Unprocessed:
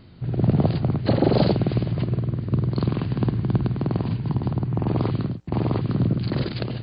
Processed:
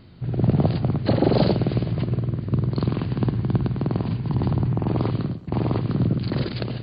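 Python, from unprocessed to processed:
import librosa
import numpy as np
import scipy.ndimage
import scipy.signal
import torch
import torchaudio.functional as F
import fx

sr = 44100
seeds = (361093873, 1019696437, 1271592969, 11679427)

p1 = x + fx.echo_feedback(x, sr, ms=119, feedback_pct=46, wet_db=-17.5, dry=0)
y = fx.env_flatten(p1, sr, amount_pct=70, at=(4.33, 4.73))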